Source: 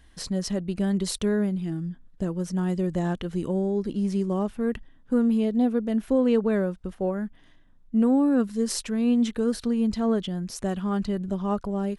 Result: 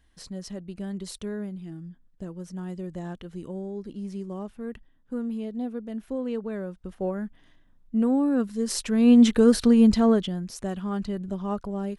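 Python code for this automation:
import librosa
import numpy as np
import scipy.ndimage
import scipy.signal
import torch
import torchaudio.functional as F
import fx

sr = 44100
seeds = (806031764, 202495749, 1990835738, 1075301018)

y = fx.gain(x, sr, db=fx.line((6.58, -9.0), (7.02, -2.0), (8.62, -2.0), (9.19, 7.5), (9.9, 7.5), (10.5, -3.0)))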